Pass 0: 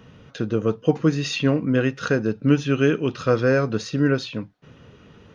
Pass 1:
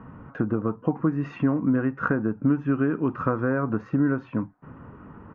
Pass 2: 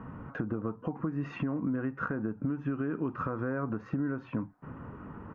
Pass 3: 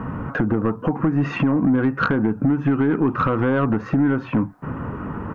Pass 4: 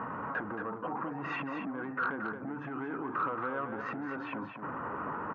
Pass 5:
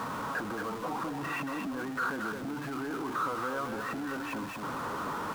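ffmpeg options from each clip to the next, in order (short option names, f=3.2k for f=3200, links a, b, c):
-af "lowshelf=f=100:g=6,acompressor=threshold=-23dB:ratio=6,firequalizer=gain_entry='entry(120,0);entry(280,7);entry(450,-2);entry(970,11);entry(3800,-30)':delay=0.05:min_phase=1"
-af "alimiter=limit=-16.5dB:level=0:latency=1:release=163,acompressor=threshold=-31dB:ratio=2.5"
-af "aeval=exprs='0.119*sin(PI/2*1.78*val(0)/0.119)':c=same,volume=6.5dB"
-af "alimiter=limit=-23.5dB:level=0:latency=1:release=11,bandpass=f=1.1k:t=q:w=0.89:csg=0,aecho=1:1:226:0.447"
-af "aeval=exprs='val(0)+0.5*0.0133*sgn(val(0))':c=same,volume=-1dB"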